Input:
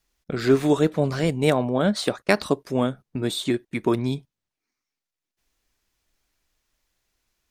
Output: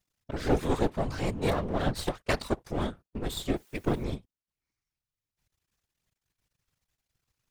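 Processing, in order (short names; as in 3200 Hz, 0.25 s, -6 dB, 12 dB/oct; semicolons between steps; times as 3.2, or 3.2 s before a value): half-wave rectifier; 3.56–4.04 requantised 10-bit, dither triangular; whisperiser; gain -3.5 dB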